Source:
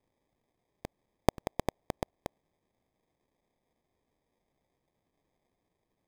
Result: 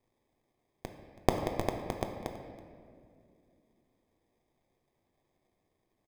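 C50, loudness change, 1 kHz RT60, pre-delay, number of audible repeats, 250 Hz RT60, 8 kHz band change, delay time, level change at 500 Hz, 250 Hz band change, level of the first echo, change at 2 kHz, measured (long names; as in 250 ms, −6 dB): 5.5 dB, +1.5 dB, 1.9 s, 3 ms, 1, 3.4 s, +1.0 dB, 327 ms, +2.0 dB, +2.0 dB, −18.5 dB, +1.5 dB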